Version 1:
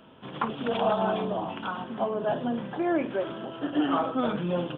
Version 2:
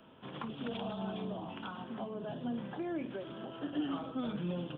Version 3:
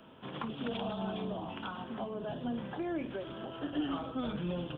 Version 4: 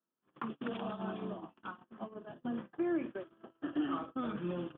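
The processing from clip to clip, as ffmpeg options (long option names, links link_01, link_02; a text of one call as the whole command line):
ffmpeg -i in.wav -filter_complex "[0:a]acrossover=split=290|3000[link_01][link_02][link_03];[link_02]acompressor=threshold=-37dB:ratio=6[link_04];[link_01][link_04][link_03]amix=inputs=3:normalize=0,volume=-5.5dB" out.wav
ffmpeg -i in.wav -af "asubboost=boost=5.5:cutoff=76,volume=3dB" out.wav
ffmpeg -i in.wav -af "highpass=100,equalizer=frequency=110:width_type=q:width=4:gain=-4,equalizer=frequency=220:width_type=q:width=4:gain=3,equalizer=frequency=340:width_type=q:width=4:gain=8,equalizer=frequency=1200:width_type=q:width=4:gain=8,equalizer=frequency=1700:width_type=q:width=4:gain=5,lowpass=frequency=3100:width=0.5412,lowpass=frequency=3100:width=1.3066,agate=range=-37dB:threshold=-35dB:ratio=16:detection=peak,volume=-4dB" out.wav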